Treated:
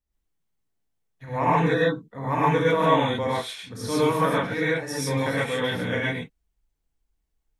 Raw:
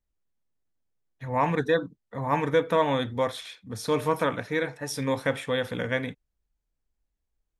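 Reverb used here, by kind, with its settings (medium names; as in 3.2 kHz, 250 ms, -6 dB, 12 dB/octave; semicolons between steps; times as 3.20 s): gated-style reverb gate 160 ms rising, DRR -7.5 dB; trim -4 dB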